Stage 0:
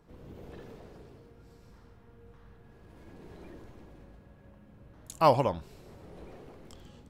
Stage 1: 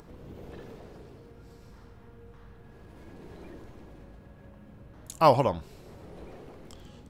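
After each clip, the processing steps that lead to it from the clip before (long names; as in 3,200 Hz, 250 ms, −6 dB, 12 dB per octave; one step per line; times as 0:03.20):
upward compression, threshold −47 dBFS
level +2.5 dB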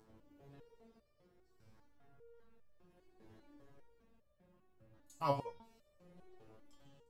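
step-sequenced resonator 5 Hz 110–600 Hz
level −4.5 dB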